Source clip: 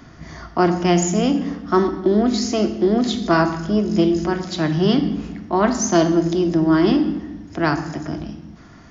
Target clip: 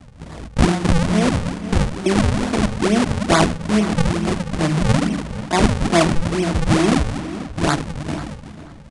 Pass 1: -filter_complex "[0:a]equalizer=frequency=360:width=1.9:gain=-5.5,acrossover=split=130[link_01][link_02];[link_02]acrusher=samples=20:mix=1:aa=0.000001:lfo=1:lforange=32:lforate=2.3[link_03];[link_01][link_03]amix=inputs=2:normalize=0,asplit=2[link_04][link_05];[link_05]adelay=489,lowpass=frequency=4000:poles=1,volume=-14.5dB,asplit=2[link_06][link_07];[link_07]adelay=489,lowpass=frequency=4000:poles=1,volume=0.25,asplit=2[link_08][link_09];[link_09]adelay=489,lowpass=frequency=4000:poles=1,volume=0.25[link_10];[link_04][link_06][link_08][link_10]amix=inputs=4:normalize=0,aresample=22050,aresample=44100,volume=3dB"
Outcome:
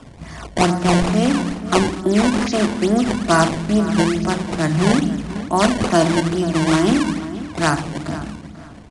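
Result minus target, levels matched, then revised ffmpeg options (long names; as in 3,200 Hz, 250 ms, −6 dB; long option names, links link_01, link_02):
sample-and-hold swept by an LFO: distortion −13 dB
-filter_complex "[0:a]equalizer=frequency=360:width=1.9:gain=-5.5,acrossover=split=130[link_01][link_02];[link_02]acrusher=samples=75:mix=1:aa=0.000001:lfo=1:lforange=120:lforate=2.3[link_03];[link_01][link_03]amix=inputs=2:normalize=0,asplit=2[link_04][link_05];[link_05]adelay=489,lowpass=frequency=4000:poles=1,volume=-14.5dB,asplit=2[link_06][link_07];[link_07]adelay=489,lowpass=frequency=4000:poles=1,volume=0.25,asplit=2[link_08][link_09];[link_09]adelay=489,lowpass=frequency=4000:poles=1,volume=0.25[link_10];[link_04][link_06][link_08][link_10]amix=inputs=4:normalize=0,aresample=22050,aresample=44100,volume=3dB"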